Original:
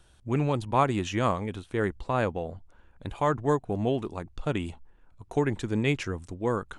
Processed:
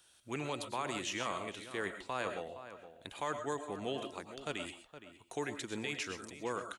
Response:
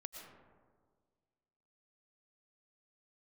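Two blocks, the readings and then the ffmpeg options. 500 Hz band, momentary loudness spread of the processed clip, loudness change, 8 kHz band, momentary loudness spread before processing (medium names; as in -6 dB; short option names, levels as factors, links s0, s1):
-11.5 dB, 12 LU, -11.0 dB, +1.0 dB, 10 LU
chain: -filter_complex "[0:a]aderivative,acrossover=split=500|1300[s0][s1][s2];[s0]acontrast=66[s3];[s3][s1][s2]amix=inputs=3:normalize=0,alimiter=level_in=3.35:limit=0.0631:level=0:latency=1:release=36,volume=0.299,asplit=2[s4][s5];[s5]adynamicsmooth=sensitivity=6.5:basefreq=5600,volume=1.12[s6];[s4][s6]amix=inputs=2:normalize=0,asplit=2[s7][s8];[s8]adelay=466.5,volume=0.251,highshelf=f=4000:g=-10.5[s9];[s7][s9]amix=inputs=2:normalize=0[s10];[1:a]atrim=start_sample=2205,atrim=end_sample=6174[s11];[s10][s11]afir=irnorm=-1:irlink=0,volume=2.66"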